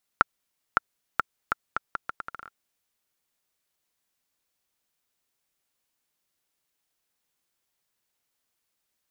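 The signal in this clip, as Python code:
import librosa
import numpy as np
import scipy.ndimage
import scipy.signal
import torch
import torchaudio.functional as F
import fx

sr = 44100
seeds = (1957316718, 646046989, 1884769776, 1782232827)

y = fx.bouncing_ball(sr, first_gap_s=0.56, ratio=0.76, hz=1370.0, decay_ms=18.0, level_db=-2.5)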